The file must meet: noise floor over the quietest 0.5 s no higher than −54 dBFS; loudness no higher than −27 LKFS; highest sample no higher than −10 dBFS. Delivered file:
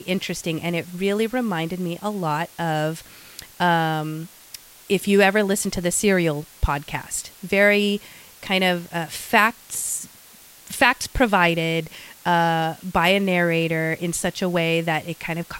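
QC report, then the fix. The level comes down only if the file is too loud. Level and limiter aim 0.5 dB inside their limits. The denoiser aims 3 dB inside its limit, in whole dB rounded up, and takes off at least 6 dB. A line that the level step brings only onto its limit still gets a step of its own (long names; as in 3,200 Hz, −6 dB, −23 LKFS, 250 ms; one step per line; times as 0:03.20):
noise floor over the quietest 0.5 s −47 dBFS: out of spec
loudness −21.5 LKFS: out of spec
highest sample −2.5 dBFS: out of spec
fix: broadband denoise 6 dB, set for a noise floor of −47 dBFS
level −6 dB
brickwall limiter −10.5 dBFS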